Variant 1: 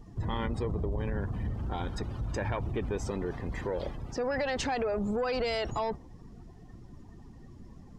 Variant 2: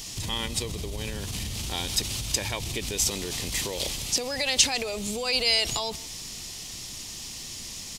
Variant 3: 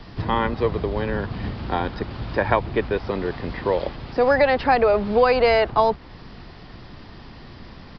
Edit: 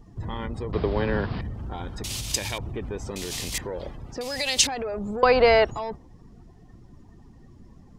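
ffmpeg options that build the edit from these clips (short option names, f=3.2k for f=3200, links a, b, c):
-filter_complex "[2:a]asplit=2[a][b];[1:a]asplit=3[c][d][e];[0:a]asplit=6[f][g][h][i][j][k];[f]atrim=end=0.732[l];[a]atrim=start=0.728:end=1.412[m];[g]atrim=start=1.408:end=2.042[n];[c]atrim=start=2.038:end=2.582[o];[h]atrim=start=2.578:end=3.162[p];[d]atrim=start=3.158:end=3.582[q];[i]atrim=start=3.578:end=4.212[r];[e]atrim=start=4.208:end=4.672[s];[j]atrim=start=4.668:end=5.232[t];[b]atrim=start=5.228:end=5.652[u];[k]atrim=start=5.648[v];[l][m]acrossfade=d=0.004:c1=hsin:c2=hsin[w];[w][n]acrossfade=d=0.004:c1=hsin:c2=hsin[x];[x][o]acrossfade=d=0.004:c1=hsin:c2=hsin[y];[y][p]acrossfade=d=0.004:c1=hsin:c2=hsin[z];[z][q]acrossfade=d=0.004:c1=hsin:c2=hsin[aa];[aa][r]acrossfade=d=0.004:c1=hsin:c2=hsin[ab];[ab][s]acrossfade=d=0.004:c1=hsin:c2=hsin[ac];[ac][t]acrossfade=d=0.004:c1=hsin:c2=hsin[ad];[ad][u]acrossfade=d=0.004:c1=hsin:c2=hsin[ae];[ae][v]acrossfade=d=0.004:c1=hsin:c2=hsin"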